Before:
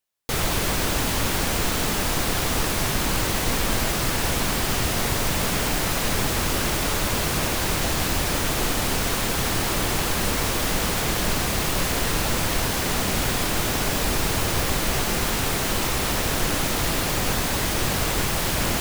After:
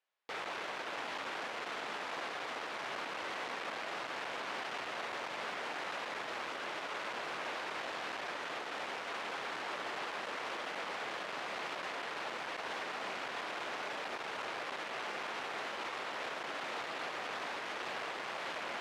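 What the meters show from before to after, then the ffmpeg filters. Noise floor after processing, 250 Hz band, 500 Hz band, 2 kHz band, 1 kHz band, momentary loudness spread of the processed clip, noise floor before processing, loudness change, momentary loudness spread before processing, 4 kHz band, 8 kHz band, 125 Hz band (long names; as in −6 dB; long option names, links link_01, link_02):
−43 dBFS, −23.5 dB, −14.5 dB, −12.0 dB, −11.5 dB, 1 LU, −25 dBFS, −17.0 dB, 0 LU, −17.5 dB, −29.0 dB, −36.0 dB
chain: -af "asoftclip=type=tanh:threshold=-27dB,highpass=550,lowpass=2600,alimiter=level_in=10dB:limit=-24dB:level=0:latency=1:release=400,volume=-10dB,volume=3dB"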